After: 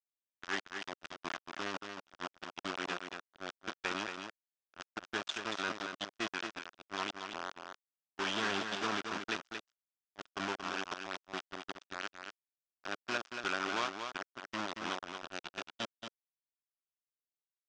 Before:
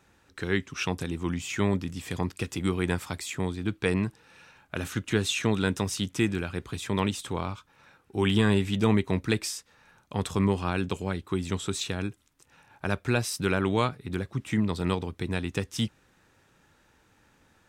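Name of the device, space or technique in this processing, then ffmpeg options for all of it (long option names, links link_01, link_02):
hand-held game console: -af "acrusher=bits=3:mix=0:aa=0.000001,highpass=470,equalizer=frequency=480:width_type=q:width=4:gain=-9,equalizer=frequency=850:width_type=q:width=4:gain=-3,equalizer=frequency=1400:width_type=q:width=4:gain=4,equalizer=frequency=2100:width_type=q:width=4:gain=-4,equalizer=frequency=4200:width_type=q:width=4:gain=-5,lowpass=frequency=5900:width=0.5412,lowpass=frequency=5900:width=1.3066,agate=range=-24dB:threshold=-35dB:ratio=16:detection=peak,lowpass=7600,lowshelf=frequency=90:gain=5,aecho=1:1:229:0.473,volume=-6.5dB"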